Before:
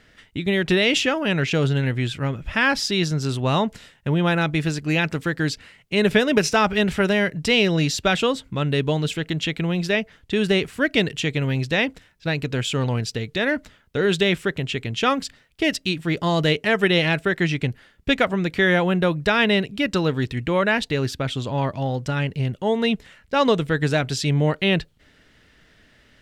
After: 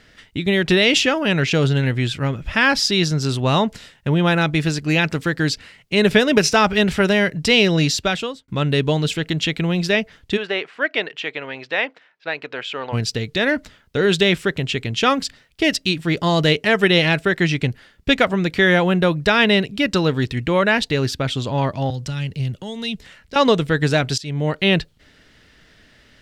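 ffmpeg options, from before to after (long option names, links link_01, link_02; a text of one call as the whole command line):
ffmpeg -i in.wav -filter_complex "[0:a]asplit=3[link_01][link_02][link_03];[link_01]afade=type=out:start_time=10.36:duration=0.02[link_04];[link_02]highpass=590,lowpass=2400,afade=type=in:start_time=10.36:duration=0.02,afade=type=out:start_time=12.92:duration=0.02[link_05];[link_03]afade=type=in:start_time=12.92:duration=0.02[link_06];[link_04][link_05][link_06]amix=inputs=3:normalize=0,asettb=1/sr,asplit=3[link_07][link_08][link_09];[link_07]atrim=end=21.904[link_10];[link_08]atrim=start=21.9:end=23.36,asetpts=PTS-STARTPTS,afade=type=in:duration=0.004:curve=qsin,afade=type=out:start_time=1.456:duration=0.004:curve=qsin,acrossover=split=160|3000[link_11][link_12][link_13];[link_12]acompressor=threshold=-39dB:ratio=3:attack=3.2:release=140:knee=2.83:detection=peak[link_14];[link_11][link_14][link_13]amix=inputs=3:normalize=0[link_15];[link_09]atrim=start=23.356[link_16];[link_10][link_15]acrossfade=duration=0.004:curve1=hsin:curve2=qsin[link_17];[link_17][link_16]acrossfade=duration=0.004:curve1=qsin:curve2=hsin,asplit=3[link_18][link_19][link_20];[link_18]atrim=end=8.48,asetpts=PTS-STARTPTS,afade=type=out:start_time=7.87:duration=0.61[link_21];[link_19]atrim=start=8.48:end=24.18,asetpts=PTS-STARTPTS,afade=type=in:duration=0.004:curve=hsin,afade=type=out:start_time=15.696:duration=0.004:curve=hsin:silence=0.125893[link_22];[link_20]atrim=start=24.18,asetpts=PTS-STARTPTS,afade=type=in:duration=0.49:silence=0.125893[link_23];[link_21][link_22][link_23]concat=n=3:v=0:a=1,equalizer=frequency=4800:width=1.5:gain=3.5,volume=3dB" out.wav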